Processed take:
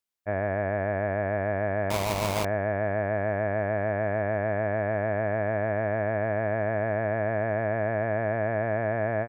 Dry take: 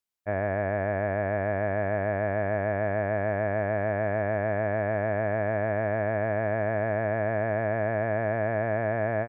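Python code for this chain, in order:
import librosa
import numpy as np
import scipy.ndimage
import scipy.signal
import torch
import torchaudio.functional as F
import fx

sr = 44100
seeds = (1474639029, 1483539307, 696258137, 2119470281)

y = fx.sample_hold(x, sr, seeds[0], rate_hz=1600.0, jitter_pct=20, at=(1.9, 2.45))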